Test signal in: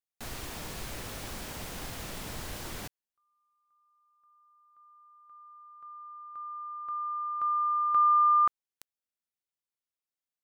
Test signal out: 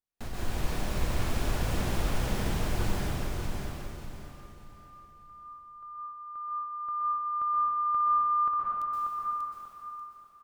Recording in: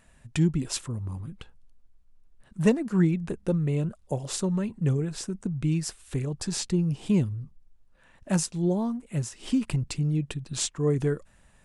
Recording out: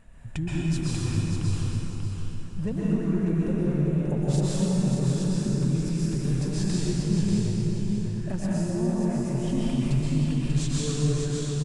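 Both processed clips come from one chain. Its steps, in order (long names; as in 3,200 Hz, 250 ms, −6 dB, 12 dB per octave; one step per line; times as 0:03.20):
spectral tilt −2 dB per octave
downward compressor 3 to 1, threshold −33 dBFS
on a send: repeating echo 589 ms, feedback 29%, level −5 dB
on the sum: dense smooth reverb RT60 3.1 s, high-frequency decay 0.9×, pre-delay 110 ms, DRR −7.5 dB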